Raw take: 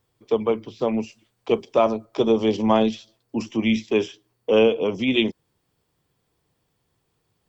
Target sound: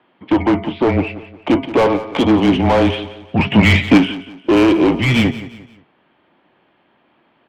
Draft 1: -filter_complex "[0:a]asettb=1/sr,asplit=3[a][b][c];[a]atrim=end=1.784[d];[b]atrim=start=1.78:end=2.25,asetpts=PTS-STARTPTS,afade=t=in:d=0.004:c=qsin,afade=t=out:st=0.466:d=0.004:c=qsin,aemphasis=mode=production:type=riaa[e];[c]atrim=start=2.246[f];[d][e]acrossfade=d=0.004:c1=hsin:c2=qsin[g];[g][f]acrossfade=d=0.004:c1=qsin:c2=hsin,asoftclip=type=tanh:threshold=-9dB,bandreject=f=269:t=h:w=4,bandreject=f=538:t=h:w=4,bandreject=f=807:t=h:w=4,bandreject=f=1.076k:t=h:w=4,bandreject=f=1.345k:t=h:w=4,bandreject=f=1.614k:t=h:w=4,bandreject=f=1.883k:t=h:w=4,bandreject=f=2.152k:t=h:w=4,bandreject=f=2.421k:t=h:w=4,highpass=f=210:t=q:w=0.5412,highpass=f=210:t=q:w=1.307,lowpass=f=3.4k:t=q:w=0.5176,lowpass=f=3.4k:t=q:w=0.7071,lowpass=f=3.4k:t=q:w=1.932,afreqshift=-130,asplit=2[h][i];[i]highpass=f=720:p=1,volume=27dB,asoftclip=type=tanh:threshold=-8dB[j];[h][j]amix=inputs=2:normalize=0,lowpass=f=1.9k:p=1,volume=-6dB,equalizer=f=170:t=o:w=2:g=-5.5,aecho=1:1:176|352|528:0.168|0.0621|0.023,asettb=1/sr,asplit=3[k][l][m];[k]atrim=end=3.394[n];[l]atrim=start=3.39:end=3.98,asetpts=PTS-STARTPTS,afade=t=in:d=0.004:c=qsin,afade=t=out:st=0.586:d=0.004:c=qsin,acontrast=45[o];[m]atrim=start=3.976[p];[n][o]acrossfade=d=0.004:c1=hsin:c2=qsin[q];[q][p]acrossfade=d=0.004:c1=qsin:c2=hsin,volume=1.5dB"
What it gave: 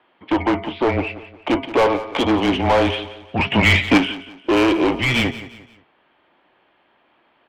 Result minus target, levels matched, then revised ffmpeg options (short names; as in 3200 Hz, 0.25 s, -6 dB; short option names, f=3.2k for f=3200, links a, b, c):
125 Hz band -3.0 dB
-filter_complex "[0:a]asettb=1/sr,asplit=3[a][b][c];[a]atrim=end=1.784[d];[b]atrim=start=1.78:end=2.25,asetpts=PTS-STARTPTS,afade=t=in:d=0.004:c=qsin,afade=t=out:st=0.466:d=0.004:c=qsin,aemphasis=mode=production:type=riaa[e];[c]atrim=start=2.246[f];[d][e]acrossfade=d=0.004:c1=hsin:c2=qsin[g];[g][f]acrossfade=d=0.004:c1=qsin:c2=hsin,asoftclip=type=tanh:threshold=-9dB,bandreject=f=269:t=h:w=4,bandreject=f=538:t=h:w=4,bandreject=f=807:t=h:w=4,bandreject=f=1.076k:t=h:w=4,bandreject=f=1.345k:t=h:w=4,bandreject=f=1.614k:t=h:w=4,bandreject=f=1.883k:t=h:w=4,bandreject=f=2.152k:t=h:w=4,bandreject=f=2.421k:t=h:w=4,highpass=f=210:t=q:w=0.5412,highpass=f=210:t=q:w=1.307,lowpass=f=3.4k:t=q:w=0.5176,lowpass=f=3.4k:t=q:w=0.7071,lowpass=f=3.4k:t=q:w=1.932,afreqshift=-130,asplit=2[h][i];[i]highpass=f=720:p=1,volume=27dB,asoftclip=type=tanh:threshold=-8dB[j];[h][j]amix=inputs=2:normalize=0,lowpass=f=1.9k:p=1,volume=-6dB,equalizer=f=170:t=o:w=2:g=4,aecho=1:1:176|352|528:0.168|0.0621|0.023,asettb=1/sr,asplit=3[k][l][m];[k]atrim=end=3.394[n];[l]atrim=start=3.39:end=3.98,asetpts=PTS-STARTPTS,afade=t=in:d=0.004:c=qsin,afade=t=out:st=0.586:d=0.004:c=qsin,acontrast=45[o];[m]atrim=start=3.976[p];[n][o]acrossfade=d=0.004:c1=hsin:c2=qsin[q];[q][p]acrossfade=d=0.004:c1=qsin:c2=hsin,volume=1.5dB"